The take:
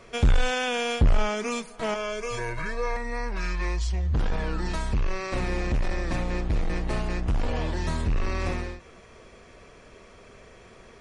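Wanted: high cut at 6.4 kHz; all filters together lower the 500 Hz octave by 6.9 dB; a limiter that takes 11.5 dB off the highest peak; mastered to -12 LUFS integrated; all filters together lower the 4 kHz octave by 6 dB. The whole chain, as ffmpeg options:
-af "lowpass=6400,equalizer=f=500:t=o:g=-8.5,equalizer=f=4000:t=o:g=-7.5,volume=14.1,alimiter=limit=0.75:level=0:latency=1"

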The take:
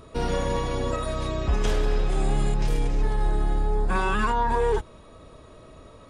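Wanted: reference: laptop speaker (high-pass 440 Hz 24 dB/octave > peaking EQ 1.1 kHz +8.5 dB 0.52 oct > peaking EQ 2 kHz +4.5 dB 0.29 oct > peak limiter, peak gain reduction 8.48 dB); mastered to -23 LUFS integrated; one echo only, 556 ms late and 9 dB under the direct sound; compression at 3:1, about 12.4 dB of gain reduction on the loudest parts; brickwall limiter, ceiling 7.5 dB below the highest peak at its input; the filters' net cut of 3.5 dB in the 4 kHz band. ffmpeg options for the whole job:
-af "equalizer=f=4000:t=o:g=-5,acompressor=threshold=0.0158:ratio=3,alimiter=level_in=2.24:limit=0.0631:level=0:latency=1,volume=0.447,highpass=f=440:w=0.5412,highpass=f=440:w=1.3066,equalizer=f=1100:t=o:w=0.52:g=8.5,equalizer=f=2000:t=o:w=0.29:g=4.5,aecho=1:1:556:0.355,volume=11.9,alimiter=limit=0.211:level=0:latency=1"

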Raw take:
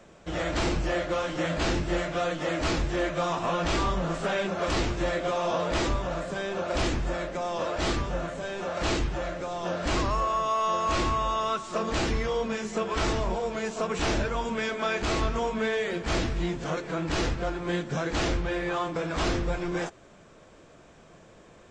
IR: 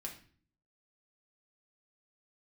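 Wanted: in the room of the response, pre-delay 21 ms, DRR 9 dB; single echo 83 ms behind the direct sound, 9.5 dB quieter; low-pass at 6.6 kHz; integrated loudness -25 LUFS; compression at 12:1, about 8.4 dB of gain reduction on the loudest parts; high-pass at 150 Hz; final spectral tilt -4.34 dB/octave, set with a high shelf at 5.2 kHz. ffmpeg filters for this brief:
-filter_complex "[0:a]highpass=150,lowpass=6600,highshelf=f=5200:g=4,acompressor=threshold=0.0251:ratio=12,aecho=1:1:83:0.335,asplit=2[s0][s1];[1:a]atrim=start_sample=2205,adelay=21[s2];[s1][s2]afir=irnorm=-1:irlink=0,volume=0.473[s3];[s0][s3]amix=inputs=2:normalize=0,volume=2.99"

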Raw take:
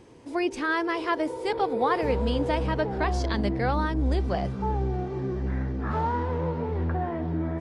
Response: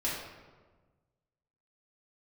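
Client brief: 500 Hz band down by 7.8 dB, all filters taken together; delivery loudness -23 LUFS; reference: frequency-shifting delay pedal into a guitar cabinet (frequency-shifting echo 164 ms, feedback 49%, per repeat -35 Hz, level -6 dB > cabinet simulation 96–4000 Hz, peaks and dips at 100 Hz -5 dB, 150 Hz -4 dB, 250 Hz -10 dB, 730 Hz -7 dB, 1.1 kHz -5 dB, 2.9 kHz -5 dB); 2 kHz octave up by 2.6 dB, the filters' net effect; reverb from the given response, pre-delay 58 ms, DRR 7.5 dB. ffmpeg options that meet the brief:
-filter_complex "[0:a]equalizer=f=500:t=o:g=-8,equalizer=f=2000:t=o:g=5,asplit=2[s0][s1];[1:a]atrim=start_sample=2205,adelay=58[s2];[s1][s2]afir=irnorm=-1:irlink=0,volume=0.2[s3];[s0][s3]amix=inputs=2:normalize=0,asplit=7[s4][s5][s6][s7][s8][s9][s10];[s5]adelay=164,afreqshift=-35,volume=0.501[s11];[s6]adelay=328,afreqshift=-70,volume=0.245[s12];[s7]adelay=492,afreqshift=-105,volume=0.12[s13];[s8]adelay=656,afreqshift=-140,volume=0.0589[s14];[s9]adelay=820,afreqshift=-175,volume=0.0288[s15];[s10]adelay=984,afreqshift=-210,volume=0.0141[s16];[s4][s11][s12][s13][s14][s15][s16]amix=inputs=7:normalize=0,highpass=96,equalizer=f=100:t=q:w=4:g=-5,equalizer=f=150:t=q:w=4:g=-4,equalizer=f=250:t=q:w=4:g=-10,equalizer=f=730:t=q:w=4:g=-7,equalizer=f=1100:t=q:w=4:g=-5,equalizer=f=2900:t=q:w=4:g=-5,lowpass=f=4000:w=0.5412,lowpass=f=4000:w=1.3066,volume=2.37"

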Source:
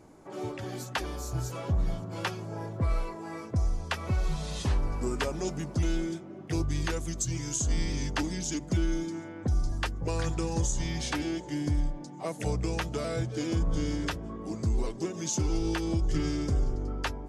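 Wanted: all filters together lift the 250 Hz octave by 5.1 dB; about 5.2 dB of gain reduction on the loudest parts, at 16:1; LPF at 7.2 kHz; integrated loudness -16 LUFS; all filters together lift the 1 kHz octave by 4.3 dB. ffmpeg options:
-af "lowpass=7200,equalizer=f=250:t=o:g=7,equalizer=f=1000:t=o:g=5,acompressor=threshold=0.0501:ratio=16,volume=7.08"

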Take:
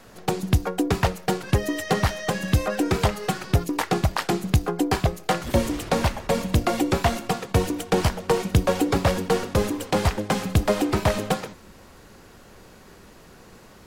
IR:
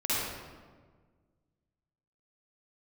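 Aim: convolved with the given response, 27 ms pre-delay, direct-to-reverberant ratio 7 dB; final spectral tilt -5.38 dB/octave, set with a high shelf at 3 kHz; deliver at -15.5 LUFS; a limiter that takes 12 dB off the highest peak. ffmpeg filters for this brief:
-filter_complex "[0:a]highshelf=f=3000:g=-3,alimiter=limit=0.0891:level=0:latency=1,asplit=2[s0][s1];[1:a]atrim=start_sample=2205,adelay=27[s2];[s1][s2]afir=irnorm=-1:irlink=0,volume=0.141[s3];[s0][s3]amix=inputs=2:normalize=0,volume=5.31"

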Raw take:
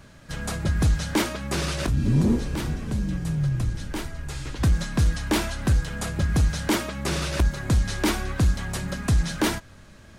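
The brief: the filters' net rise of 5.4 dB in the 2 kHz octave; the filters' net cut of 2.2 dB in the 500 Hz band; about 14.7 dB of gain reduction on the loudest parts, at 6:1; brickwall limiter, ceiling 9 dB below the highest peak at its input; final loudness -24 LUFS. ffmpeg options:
-af "equalizer=f=500:t=o:g=-3.5,equalizer=f=2000:t=o:g=7,acompressor=threshold=0.0224:ratio=6,volume=5.01,alimiter=limit=0.188:level=0:latency=1"

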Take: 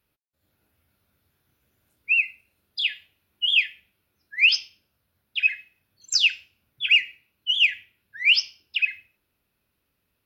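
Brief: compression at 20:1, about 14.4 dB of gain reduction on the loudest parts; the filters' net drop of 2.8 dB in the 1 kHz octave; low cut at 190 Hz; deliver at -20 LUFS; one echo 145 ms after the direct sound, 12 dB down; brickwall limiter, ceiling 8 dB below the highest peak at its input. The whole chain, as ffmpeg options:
-af "highpass=190,equalizer=f=1000:t=o:g=-4.5,acompressor=threshold=0.0398:ratio=20,alimiter=level_in=1.41:limit=0.0631:level=0:latency=1,volume=0.708,aecho=1:1:145:0.251,volume=6.31"

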